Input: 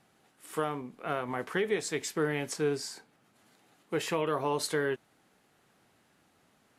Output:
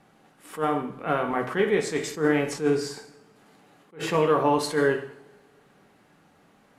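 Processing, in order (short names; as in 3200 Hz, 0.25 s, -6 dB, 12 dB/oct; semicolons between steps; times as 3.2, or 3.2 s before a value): high shelf 2800 Hz -9.5 dB; two-slope reverb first 0.6 s, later 2.2 s, from -26 dB, DRR 3.5 dB; attack slew limiter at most 210 dB/s; gain +8 dB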